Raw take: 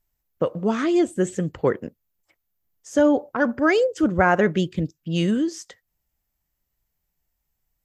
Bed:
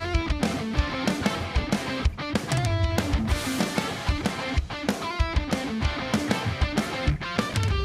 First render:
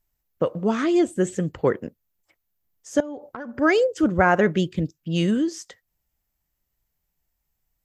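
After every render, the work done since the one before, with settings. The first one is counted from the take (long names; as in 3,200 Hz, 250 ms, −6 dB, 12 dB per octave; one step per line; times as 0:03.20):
0:03.00–0:03.58: downward compressor 16 to 1, threshold −30 dBFS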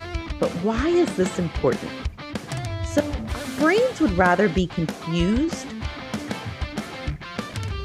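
mix in bed −4.5 dB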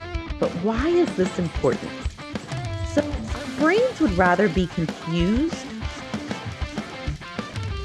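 high-frequency loss of the air 56 metres
delay with a high-pass on its return 380 ms, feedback 73%, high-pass 4,300 Hz, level −5 dB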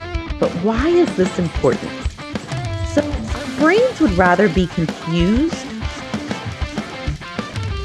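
level +5.5 dB
brickwall limiter −1 dBFS, peak gain reduction 2 dB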